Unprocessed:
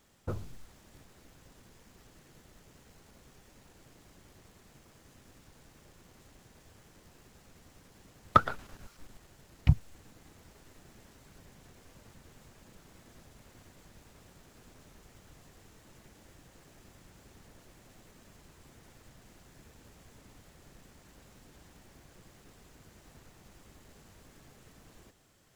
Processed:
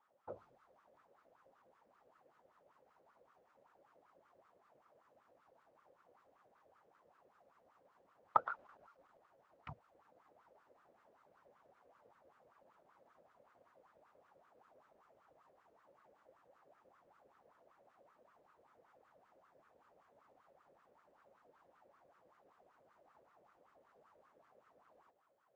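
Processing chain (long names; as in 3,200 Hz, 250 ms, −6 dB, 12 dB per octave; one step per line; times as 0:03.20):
LFO wah 5.2 Hz 520–1,300 Hz, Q 6.2
level +3 dB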